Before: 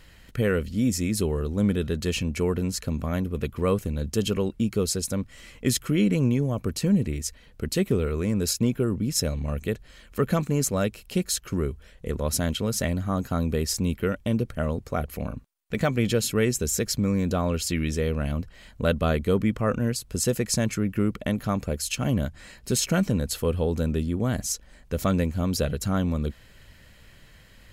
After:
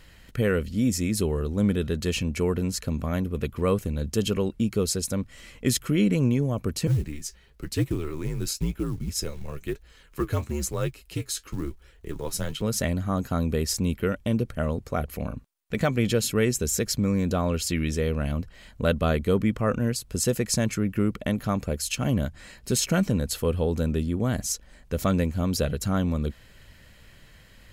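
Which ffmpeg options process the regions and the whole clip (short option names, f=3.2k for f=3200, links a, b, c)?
-filter_complex "[0:a]asettb=1/sr,asplit=3[a][b][c];[a]atrim=end=6.874[d];[b]atrim=start=6.87:end=12.62,asetpts=PTS-STARTPTS,afade=t=in:d=0.004:c=qsin,afade=t=out:st=5.746:d=0.004:c=qsin,flanger=delay=4.5:depth=7.3:regen=52:speed=1:shape=triangular,acrusher=bits=7:mode=log:mix=0:aa=0.000001,afreqshift=-70[e];[c]atrim=start=12.616[f];[d][e]acrossfade=d=0.004:c1=hsin:c2=qsin[g];[g][f]acrossfade=d=0.004:c1=qsin:c2=hsin"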